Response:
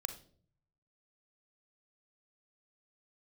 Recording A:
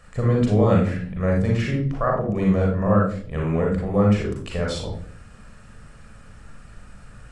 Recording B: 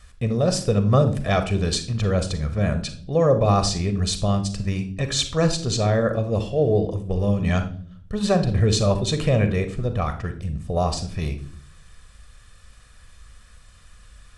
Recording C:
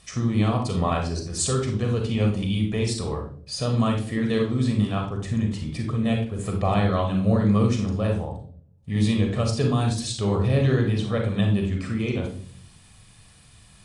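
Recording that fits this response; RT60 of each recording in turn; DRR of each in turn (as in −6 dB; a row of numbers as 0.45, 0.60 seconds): B; 0.50, 0.50, 0.50 seconds; −1.5, 8.5, 3.0 decibels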